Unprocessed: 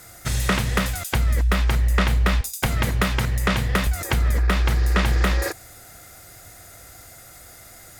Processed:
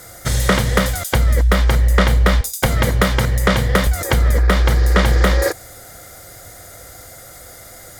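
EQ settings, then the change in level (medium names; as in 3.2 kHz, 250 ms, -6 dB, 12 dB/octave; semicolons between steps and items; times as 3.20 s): peaking EQ 520 Hz +7.5 dB 0.39 oct; band-stop 2.6 kHz, Q 6.6; +5.5 dB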